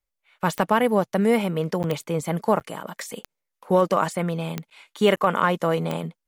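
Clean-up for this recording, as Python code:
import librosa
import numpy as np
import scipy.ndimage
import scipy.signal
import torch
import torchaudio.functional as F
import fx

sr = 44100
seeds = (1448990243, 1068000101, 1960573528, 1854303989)

y = fx.fix_declick_ar(x, sr, threshold=10.0)
y = fx.fix_interpolate(y, sr, at_s=(1.83, 2.6, 4.7, 5.16), length_ms=9.3)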